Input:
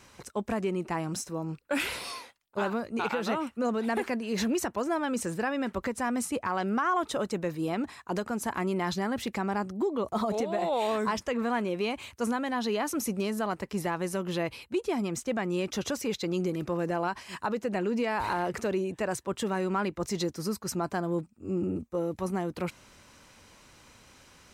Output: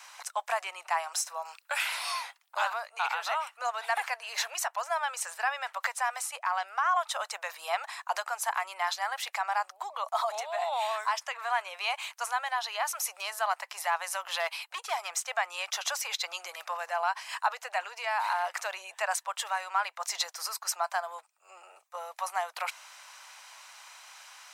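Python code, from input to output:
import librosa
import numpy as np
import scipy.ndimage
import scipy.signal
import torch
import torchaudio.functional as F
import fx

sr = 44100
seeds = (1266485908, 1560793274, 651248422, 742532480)

y = fx.band_squash(x, sr, depth_pct=40, at=(1.45, 2.7))
y = fx.band_squash(y, sr, depth_pct=70, at=(5.8, 6.25))
y = fx.clip_hard(y, sr, threshold_db=-25.0, at=(14.4, 15.15))
y = scipy.signal.sosfilt(scipy.signal.butter(8, 690.0, 'highpass', fs=sr, output='sos'), y)
y = fx.rider(y, sr, range_db=3, speed_s=0.5)
y = y * 10.0 ** (4.0 / 20.0)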